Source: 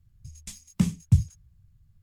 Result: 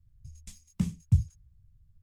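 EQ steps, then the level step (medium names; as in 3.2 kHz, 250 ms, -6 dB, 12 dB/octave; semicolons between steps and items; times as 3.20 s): bass shelf 110 Hz +10.5 dB; -9.0 dB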